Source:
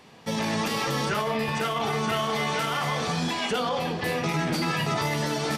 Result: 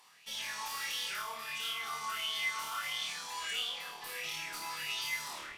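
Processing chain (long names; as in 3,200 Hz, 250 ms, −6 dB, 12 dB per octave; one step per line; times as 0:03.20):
turntable brake at the end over 0.32 s
reversed playback
upward compression, threshold −31 dBFS
reversed playback
first-order pre-emphasis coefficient 0.97
tube saturation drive 31 dB, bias 0.45
on a send: flutter between parallel walls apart 4.5 metres, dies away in 0.62 s
on the sum: auto-filter bell 1.5 Hz 940–3,300 Hz +14 dB
level −6 dB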